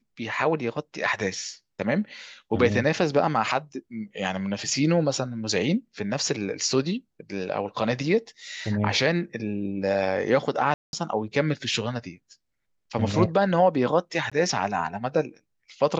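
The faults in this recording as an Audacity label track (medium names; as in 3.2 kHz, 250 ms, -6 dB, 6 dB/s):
10.740000	10.930000	dropout 191 ms
14.300000	14.320000	dropout 16 ms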